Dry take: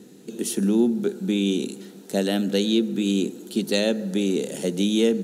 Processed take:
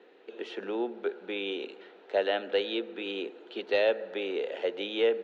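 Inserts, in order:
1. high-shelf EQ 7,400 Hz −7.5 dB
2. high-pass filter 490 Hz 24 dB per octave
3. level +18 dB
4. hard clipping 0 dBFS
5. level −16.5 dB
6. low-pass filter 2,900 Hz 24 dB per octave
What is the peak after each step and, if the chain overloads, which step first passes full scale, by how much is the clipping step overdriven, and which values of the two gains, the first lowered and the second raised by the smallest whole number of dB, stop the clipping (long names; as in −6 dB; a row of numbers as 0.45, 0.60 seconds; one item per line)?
−9.5, −11.0, +7.0, 0.0, −16.5, −15.5 dBFS
step 3, 7.0 dB
step 3 +11 dB, step 5 −9.5 dB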